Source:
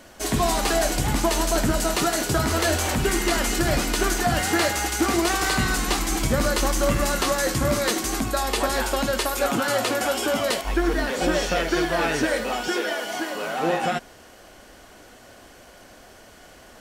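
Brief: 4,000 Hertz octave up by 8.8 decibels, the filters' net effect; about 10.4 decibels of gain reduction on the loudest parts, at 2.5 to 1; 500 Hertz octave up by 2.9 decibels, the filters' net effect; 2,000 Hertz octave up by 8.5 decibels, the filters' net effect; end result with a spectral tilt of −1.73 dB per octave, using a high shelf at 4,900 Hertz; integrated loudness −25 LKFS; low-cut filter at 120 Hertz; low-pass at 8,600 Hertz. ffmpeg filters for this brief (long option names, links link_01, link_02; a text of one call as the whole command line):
ffmpeg -i in.wav -af "highpass=120,lowpass=8600,equalizer=frequency=500:width_type=o:gain=3,equalizer=frequency=2000:width_type=o:gain=8.5,equalizer=frequency=4000:width_type=o:gain=5,highshelf=frequency=4900:gain=7.5,acompressor=threshold=-30dB:ratio=2.5,volume=2dB" out.wav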